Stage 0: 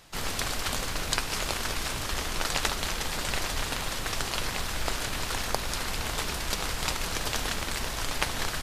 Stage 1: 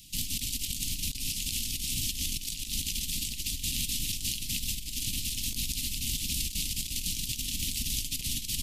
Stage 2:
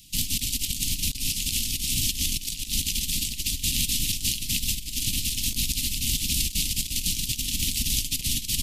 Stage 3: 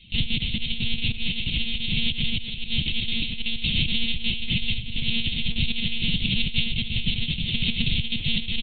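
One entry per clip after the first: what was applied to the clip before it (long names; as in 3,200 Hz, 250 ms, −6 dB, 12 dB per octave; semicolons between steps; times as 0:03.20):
elliptic band-stop filter 260–2,800 Hz, stop band 40 dB; high-shelf EQ 6,900 Hz +9.5 dB; compressor whose output falls as the input rises −32 dBFS, ratio −0.5
expander for the loud parts 1.5 to 1, over −42 dBFS; level +7 dB
single-tap delay 875 ms −17 dB; on a send at −14 dB: convolution reverb RT60 0.85 s, pre-delay 5 ms; on the sum: one-pitch LPC vocoder at 8 kHz 230 Hz; level +5.5 dB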